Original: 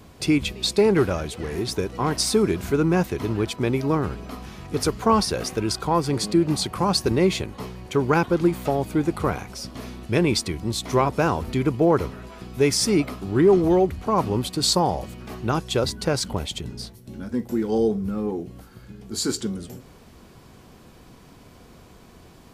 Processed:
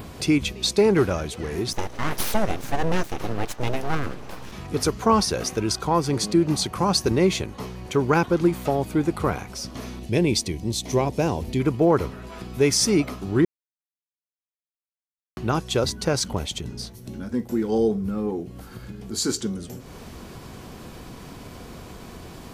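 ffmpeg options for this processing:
-filter_complex "[0:a]asplit=3[s0][s1][s2];[s0]afade=t=out:st=1.72:d=0.02[s3];[s1]aeval=exprs='abs(val(0))':c=same,afade=t=in:st=1.72:d=0.02,afade=t=out:st=4.51:d=0.02[s4];[s2]afade=t=in:st=4.51:d=0.02[s5];[s3][s4][s5]amix=inputs=3:normalize=0,asettb=1/sr,asplit=3[s6][s7][s8];[s6]atrim=end=9.994[s9];[s7]atrim=start=9.99:end=11.6,asetpts=PTS-STARTPTS,afade=t=in:d=0.004:c=qsin,afade=t=out:st=1.606:d=0.004:c=qsin,equalizer=f=1300:t=o:w=0.72:g=-14.5[s10];[s8]atrim=start=11.596[s11];[s9][s10]acrossfade=d=0.004:c1=hsin:c2=qsin[s12];[s12][s11]acrossfade=d=0.004:c1=qsin:c2=hsin,asplit=3[s13][s14][s15];[s13]atrim=end=13.45,asetpts=PTS-STARTPTS,afade=t=out:st=13.446:d=0.004:c=hsin[s16];[s14]atrim=start=13.45:end=15.37,asetpts=PTS-STARTPTS,volume=0[s17];[s15]atrim=start=15.37,asetpts=PTS-STARTPTS,afade=t=in:d=0.004:c=hsin[s18];[s16][s17][s18]concat=n=3:v=0:a=1,adynamicequalizer=threshold=0.00355:dfrequency=6100:dqfactor=6.3:tfrequency=6100:tqfactor=6.3:attack=5:release=100:ratio=0.375:range=3:mode=boostabove:tftype=bell,acompressor=mode=upward:threshold=0.0316:ratio=2.5"

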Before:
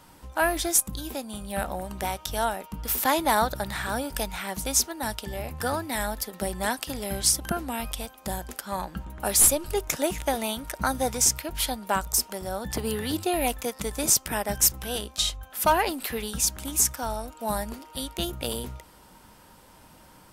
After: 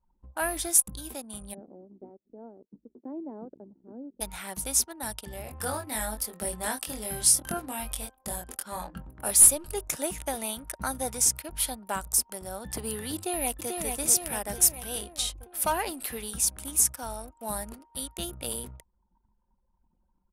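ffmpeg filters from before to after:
-filter_complex "[0:a]asplit=3[s0][s1][s2];[s0]afade=t=out:st=1.53:d=0.02[s3];[s1]asuperpass=centerf=310:order=4:qfactor=1.4,afade=t=in:st=1.53:d=0.02,afade=t=out:st=4.2:d=0.02[s4];[s2]afade=t=in:st=4.2:d=0.02[s5];[s3][s4][s5]amix=inputs=3:normalize=0,asettb=1/sr,asplit=3[s6][s7][s8];[s6]atrim=end=5.444[s9];[s7]atrim=start=5.44:end=9.31,asetpts=PTS-STARTPTS,afade=t=in:d=0.004:c=qsin,afade=t=out:st=3.866:d=0.004:c=qsin,asplit=2[s10][s11];[s11]adelay=23,volume=0.631[s12];[s10][s12]amix=inputs=2:normalize=0,atrim=end_sample=170667[s13];[s8]atrim=start=9.306[s14];[s9][s13]acrossfade=d=0.004:c1=hsin:c2=qsin[s15];[s15][s14]acrossfade=d=0.004:c1=qsin:c2=hsin,asplit=2[s16][s17];[s17]afade=t=in:st=13.15:d=0.01,afade=t=out:st=13.8:d=0.01,aecho=0:1:440|880|1320|1760|2200|2640|3080|3520|3960:0.630957|0.378574|0.227145|0.136287|0.0817721|0.0490632|0.0294379|0.0176628|0.0105977[s18];[s16][s18]amix=inputs=2:normalize=0,anlmdn=0.158,equalizer=f=10000:w=1.9:g=11,volume=0.473"

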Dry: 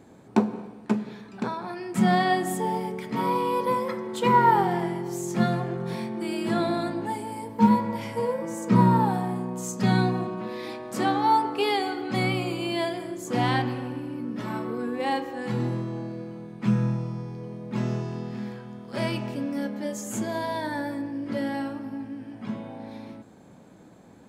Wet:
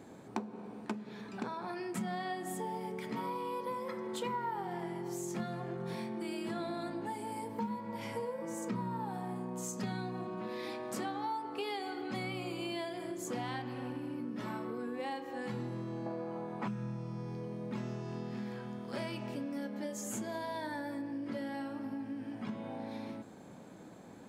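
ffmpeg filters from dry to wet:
-filter_complex "[0:a]asettb=1/sr,asplit=3[s0][s1][s2];[s0]atrim=end=16.064[s3];[s1]atrim=start=16.06:end=16.68,asetpts=PTS-STARTPTS,afade=t=in:d=0.004:c=qsin,afade=t=out:st=0.616:d=0.004:c=qsin,equalizer=f=840:w=0.75:g=14.5[s4];[s2]atrim=start=16.676[s5];[s3][s4]acrossfade=d=0.004:c1=hsin:c2=qsin[s6];[s6][s5]acrossfade=d=0.004:c1=qsin:c2=hsin,lowshelf=f=92:g=-9,acompressor=threshold=0.0141:ratio=5"

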